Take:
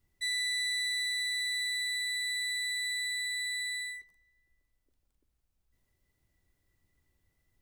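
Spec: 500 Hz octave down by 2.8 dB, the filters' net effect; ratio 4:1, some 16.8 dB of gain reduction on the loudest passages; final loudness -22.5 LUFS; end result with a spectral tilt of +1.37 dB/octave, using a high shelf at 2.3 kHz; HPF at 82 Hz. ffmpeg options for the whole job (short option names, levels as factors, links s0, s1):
-af "highpass=82,equalizer=f=500:t=o:g=-4,highshelf=f=2300:g=4,acompressor=threshold=0.00355:ratio=4,volume=14.1"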